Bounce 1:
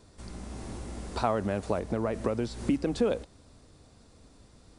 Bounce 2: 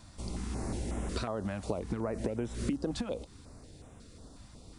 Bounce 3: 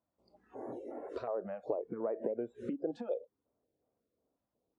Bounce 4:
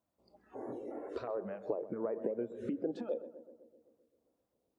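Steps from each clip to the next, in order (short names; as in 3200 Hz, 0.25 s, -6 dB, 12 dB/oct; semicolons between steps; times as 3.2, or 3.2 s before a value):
compressor 10:1, threshold -33 dBFS, peak gain reduction 12.5 dB; stepped notch 5.5 Hz 430–4500 Hz; gain +4.5 dB
spectral noise reduction 24 dB; band-pass 530 Hz, Q 1.5; gain +2 dB
dynamic EQ 690 Hz, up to -5 dB, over -48 dBFS, Q 1.7; tape echo 0.129 s, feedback 73%, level -11.5 dB, low-pass 1000 Hz; gain +1.5 dB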